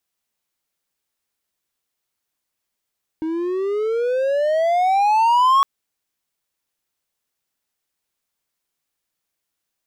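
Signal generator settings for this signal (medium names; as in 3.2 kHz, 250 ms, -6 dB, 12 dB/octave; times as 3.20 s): gliding synth tone triangle, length 2.41 s, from 313 Hz, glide +22 st, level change +10 dB, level -9 dB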